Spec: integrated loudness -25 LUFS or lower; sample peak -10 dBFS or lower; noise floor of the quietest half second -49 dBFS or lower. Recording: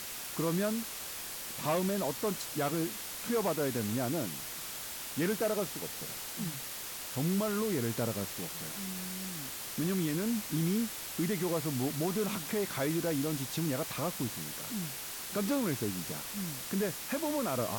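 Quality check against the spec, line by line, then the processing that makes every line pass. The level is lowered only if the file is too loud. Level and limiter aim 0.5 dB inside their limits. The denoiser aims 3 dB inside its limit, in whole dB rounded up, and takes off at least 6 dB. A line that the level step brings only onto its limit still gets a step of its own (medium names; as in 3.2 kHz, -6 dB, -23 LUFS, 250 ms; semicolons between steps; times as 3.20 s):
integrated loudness -34.0 LUFS: pass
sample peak -21.0 dBFS: pass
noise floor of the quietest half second -42 dBFS: fail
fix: noise reduction 10 dB, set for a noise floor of -42 dBFS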